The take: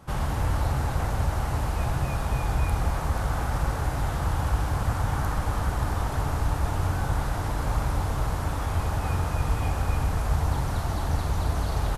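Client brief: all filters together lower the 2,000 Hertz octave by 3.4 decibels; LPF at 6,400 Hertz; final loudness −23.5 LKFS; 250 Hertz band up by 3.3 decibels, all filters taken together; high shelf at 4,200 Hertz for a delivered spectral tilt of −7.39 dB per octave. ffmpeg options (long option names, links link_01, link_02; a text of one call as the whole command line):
ffmpeg -i in.wav -af "lowpass=6400,equalizer=frequency=250:width_type=o:gain=5,equalizer=frequency=2000:width_type=o:gain=-3.5,highshelf=frequency=4200:gain=-7,volume=4dB" out.wav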